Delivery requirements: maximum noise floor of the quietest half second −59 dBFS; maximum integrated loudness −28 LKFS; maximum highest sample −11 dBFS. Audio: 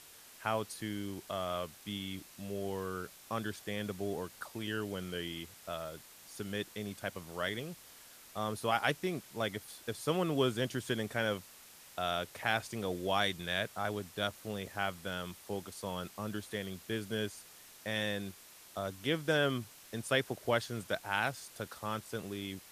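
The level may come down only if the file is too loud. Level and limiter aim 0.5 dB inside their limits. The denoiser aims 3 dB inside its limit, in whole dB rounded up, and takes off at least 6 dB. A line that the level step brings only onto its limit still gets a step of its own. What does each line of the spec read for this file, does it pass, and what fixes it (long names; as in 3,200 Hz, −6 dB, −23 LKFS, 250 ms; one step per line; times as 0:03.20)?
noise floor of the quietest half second −56 dBFS: out of spec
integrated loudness −37.0 LKFS: in spec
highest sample −14.5 dBFS: in spec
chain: broadband denoise 6 dB, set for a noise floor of −56 dBFS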